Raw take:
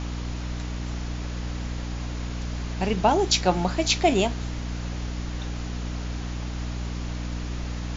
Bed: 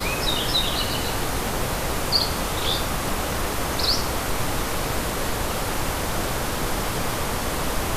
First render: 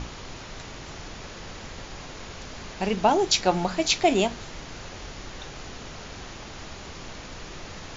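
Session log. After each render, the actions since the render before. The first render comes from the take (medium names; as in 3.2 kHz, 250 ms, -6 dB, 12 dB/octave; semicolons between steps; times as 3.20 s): hum notches 60/120/180/240/300 Hz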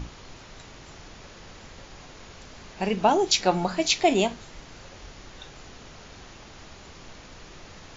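noise print and reduce 6 dB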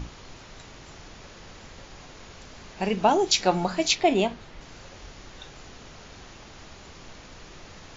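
3.95–4.61 s: distance through air 120 m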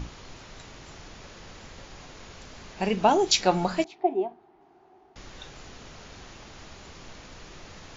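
3.84–5.16 s: two resonant band-passes 530 Hz, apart 1 oct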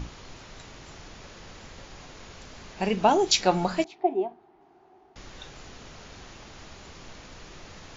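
no audible change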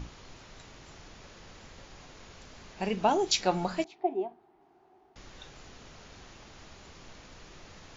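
trim -5 dB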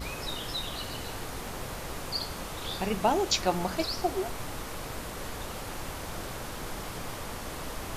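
add bed -12.5 dB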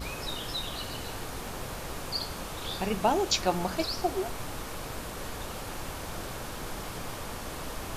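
band-stop 2 kHz, Q 28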